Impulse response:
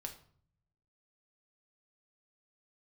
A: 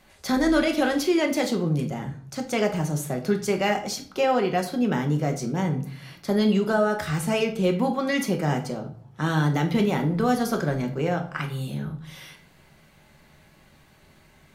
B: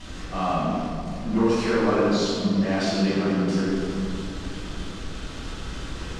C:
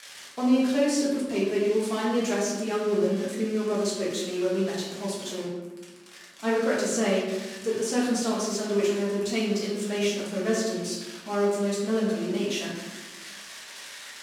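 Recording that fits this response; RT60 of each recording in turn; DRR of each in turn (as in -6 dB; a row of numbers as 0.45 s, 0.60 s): A; 0.55 s, 2.7 s, 1.2 s; 3.0 dB, -10.0 dB, -7.0 dB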